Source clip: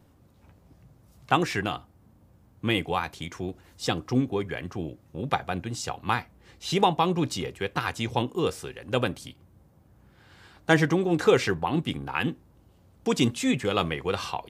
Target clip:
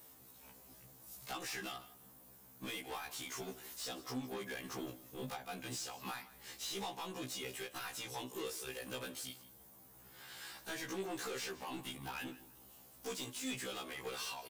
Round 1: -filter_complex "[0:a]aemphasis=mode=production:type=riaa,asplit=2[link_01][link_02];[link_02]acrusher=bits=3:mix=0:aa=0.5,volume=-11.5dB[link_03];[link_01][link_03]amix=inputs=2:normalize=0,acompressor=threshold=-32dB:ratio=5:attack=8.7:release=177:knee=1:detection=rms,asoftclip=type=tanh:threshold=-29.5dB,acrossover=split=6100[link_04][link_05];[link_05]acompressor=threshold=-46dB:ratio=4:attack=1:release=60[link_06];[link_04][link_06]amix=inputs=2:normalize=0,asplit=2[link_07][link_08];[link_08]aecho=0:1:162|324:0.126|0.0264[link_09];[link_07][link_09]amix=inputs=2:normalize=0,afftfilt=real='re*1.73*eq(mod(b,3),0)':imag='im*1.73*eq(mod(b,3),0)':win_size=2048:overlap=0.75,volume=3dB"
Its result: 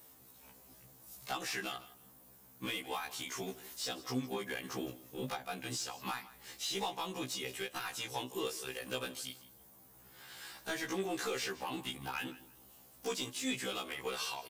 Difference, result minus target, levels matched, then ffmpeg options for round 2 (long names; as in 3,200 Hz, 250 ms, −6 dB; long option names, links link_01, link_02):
soft clipping: distortion −7 dB
-filter_complex "[0:a]aemphasis=mode=production:type=riaa,asplit=2[link_01][link_02];[link_02]acrusher=bits=3:mix=0:aa=0.5,volume=-11.5dB[link_03];[link_01][link_03]amix=inputs=2:normalize=0,acompressor=threshold=-32dB:ratio=5:attack=8.7:release=177:knee=1:detection=rms,asoftclip=type=tanh:threshold=-39dB,acrossover=split=6100[link_04][link_05];[link_05]acompressor=threshold=-46dB:ratio=4:attack=1:release=60[link_06];[link_04][link_06]amix=inputs=2:normalize=0,asplit=2[link_07][link_08];[link_08]aecho=0:1:162|324:0.126|0.0264[link_09];[link_07][link_09]amix=inputs=2:normalize=0,afftfilt=real='re*1.73*eq(mod(b,3),0)':imag='im*1.73*eq(mod(b,3),0)':win_size=2048:overlap=0.75,volume=3dB"